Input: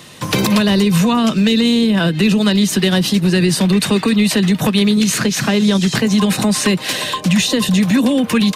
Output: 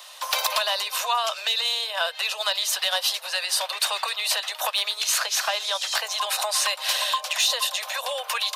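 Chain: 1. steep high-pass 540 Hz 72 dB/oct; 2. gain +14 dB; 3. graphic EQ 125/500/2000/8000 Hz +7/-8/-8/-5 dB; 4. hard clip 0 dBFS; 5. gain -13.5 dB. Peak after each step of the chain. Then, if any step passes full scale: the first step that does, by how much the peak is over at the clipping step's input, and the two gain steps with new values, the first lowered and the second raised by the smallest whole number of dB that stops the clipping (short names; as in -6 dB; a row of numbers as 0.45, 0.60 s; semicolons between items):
-5.0, +9.0, +5.5, 0.0, -13.5 dBFS; step 2, 5.5 dB; step 2 +8 dB, step 5 -7.5 dB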